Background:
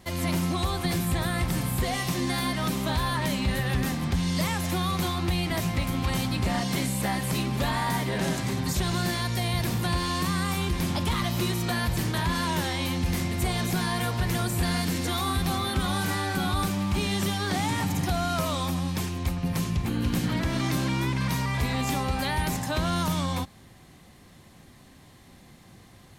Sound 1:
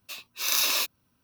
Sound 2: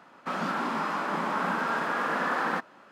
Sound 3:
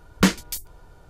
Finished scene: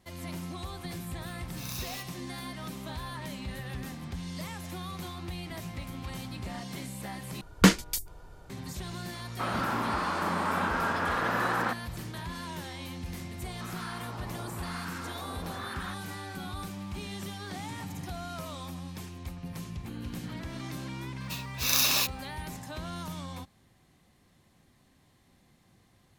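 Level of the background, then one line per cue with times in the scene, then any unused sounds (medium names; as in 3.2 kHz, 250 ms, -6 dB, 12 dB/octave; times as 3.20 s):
background -12 dB
1.17 s: add 1 -16 dB
7.41 s: replace with 3 -1 dB
9.13 s: add 2 -1 dB
13.34 s: add 2 -8.5 dB + harmonic tremolo 1 Hz, depth 100%, crossover 960 Hz
21.21 s: add 1 -0.5 dB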